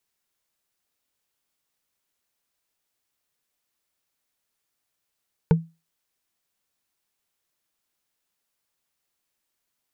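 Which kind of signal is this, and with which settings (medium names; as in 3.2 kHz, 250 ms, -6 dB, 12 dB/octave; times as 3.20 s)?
wood hit, lowest mode 164 Hz, decay 0.26 s, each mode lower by 5.5 dB, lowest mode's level -10 dB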